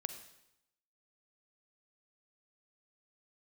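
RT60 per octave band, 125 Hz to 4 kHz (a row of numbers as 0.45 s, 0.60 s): 0.95 s, 0.85 s, 0.85 s, 0.85 s, 0.80 s, 0.80 s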